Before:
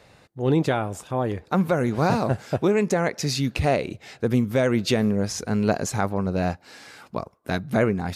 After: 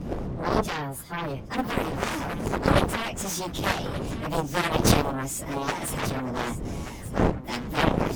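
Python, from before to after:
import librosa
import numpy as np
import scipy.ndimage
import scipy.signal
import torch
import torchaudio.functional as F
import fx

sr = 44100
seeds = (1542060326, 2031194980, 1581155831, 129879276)

y = fx.pitch_bins(x, sr, semitones=5.0)
y = fx.dmg_wind(y, sr, seeds[0], corner_hz=200.0, level_db=-27.0)
y = fx.high_shelf(y, sr, hz=5100.0, db=8.0)
y = fx.cheby_harmonics(y, sr, harmonics=(7,), levels_db=(-10,), full_scale_db=-7.0)
y = y + 10.0 ** (-13.5 / 20.0) * np.pad(y, (int(1182 * sr / 1000.0), 0))[:len(y)]
y = y * librosa.db_to_amplitude(-2.0)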